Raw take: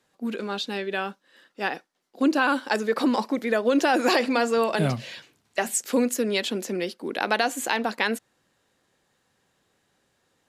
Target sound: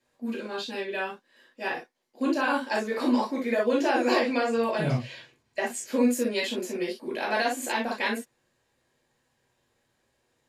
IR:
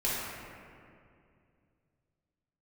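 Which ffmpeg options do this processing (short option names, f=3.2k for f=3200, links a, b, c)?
-filter_complex "[0:a]asettb=1/sr,asplit=3[a][b][c];[a]atrim=end=3.814[d];[b]atrim=start=3.81:end=6,asetpts=PTS-STARTPTS,afade=t=in:d=0.004:c=qsin,afade=t=out:st=2.186:d=0.004:c=qsin,highshelf=f=8k:g=-10[e];[c]atrim=start=5.996[f];[d][e]acrossfade=d=0.004:c1=hsin:c2=qsin[g];[g][f]acrossfade=d=0.004:c1=qsin:c2=hsin[h];[1:a]atrim=start_sample=2205,atrim=end_sample=3087[i];[h][i]afir=irnorm=-1:irlink=0,volume=-8dB"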